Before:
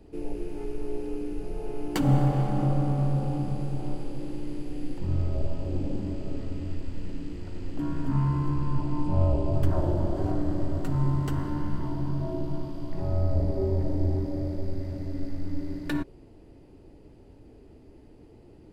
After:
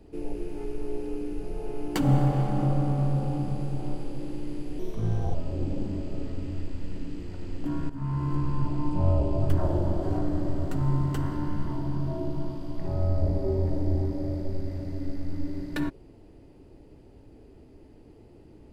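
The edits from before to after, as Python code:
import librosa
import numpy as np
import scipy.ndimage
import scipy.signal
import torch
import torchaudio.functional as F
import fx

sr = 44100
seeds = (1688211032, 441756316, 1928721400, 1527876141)

y = fx.edit(x, sr, fx.speed_span(start_s=4.79, length_s=0.69, speed=1.24),
    fx.fade_in_from(start_s=8.03, length_s=0.45, floor_db=-13.5), tone=tone)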